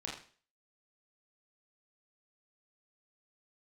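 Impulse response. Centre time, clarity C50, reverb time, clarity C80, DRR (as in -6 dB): 38 ms, 4.0 dB, 0.40 s, 9.0 dB, -3.5 dB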